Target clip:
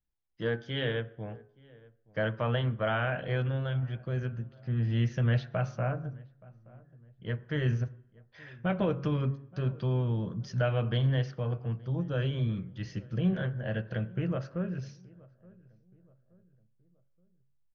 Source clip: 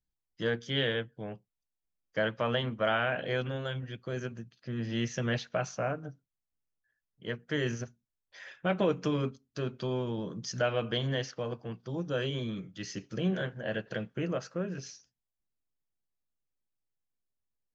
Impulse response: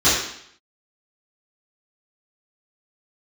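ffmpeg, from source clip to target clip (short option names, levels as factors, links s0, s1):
-filter_complex "[0:a]lowpass=f=5800:w=0.5412,lowpass=f=5800:w=1.3066,aemphasis=mode=reproduction:type=75kf,bandreject=f=139.1:t=h:w=4,bandreject=f=278.2:t=h:w=4,bandreject=f=417.3:t=h:w=4,bandreject=f=556.4:t=h:w=4,bandreject=f=695.5:t=h:w=4,bandreject=f=834.6:t=h:w=4,bandreject=f=973.7:t=h:w=4,bandreject=f=1112.8:t=h:w=4,bandreject=f=1251.9:t=h:w=4,bandreject=f=1391:t=h:w=4,bandreject=f=1530.1:t=h:w=4,asubboost=boost=4:cutoff=150,asplit=2[s0][s1];[s1]adelay=874,lowpass=f=1200:p=1,volume=0.0708,asplit=2[s2][s3];[s3]adelay=874,lowpass=f=1200:p=1,volume=0.43,asplit=2[s4][s5];[s5]adelay=874,lowpass=f=1200:p=1,volume=0.43[s6];[s0][s2][s4][s6]amix=inputs=4:normalize=0,asplit=2[s7][s8];[1:a]atrim=start_sample=2205,lowpass=2100[s9];[s8][s9]afir=irnorm=-1:irlink=0,volume=0.0141[s10];[s7][s10]amix=inputs=2:normalize=0"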